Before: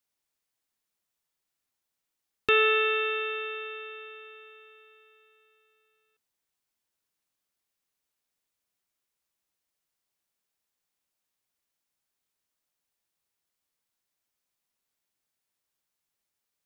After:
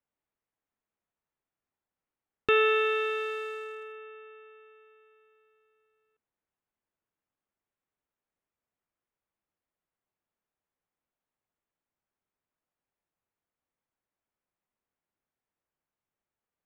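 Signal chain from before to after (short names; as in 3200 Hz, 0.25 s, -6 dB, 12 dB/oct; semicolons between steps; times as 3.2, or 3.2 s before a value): Wiener smoothing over 9 samples; high shelf 2500 Hz -10 dB; gain +1.5 dB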